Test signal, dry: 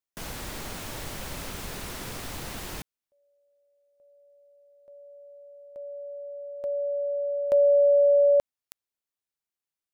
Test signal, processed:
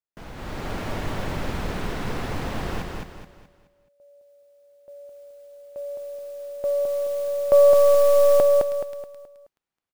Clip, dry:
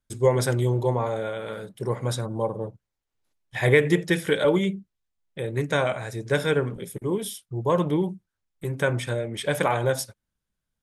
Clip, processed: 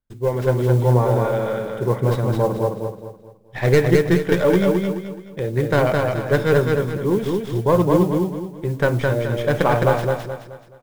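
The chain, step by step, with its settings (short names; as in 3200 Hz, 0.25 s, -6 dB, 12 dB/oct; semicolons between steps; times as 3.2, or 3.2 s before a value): tracing distortion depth 0.3 ms; LPF 1500 Hz 6 dB/oct; AGC gain up to 10 dB; modulation noise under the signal 28 dB; on a send: feedback echo 0.213 s, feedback 37%, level -3 dB; on the sum: gain -2 dB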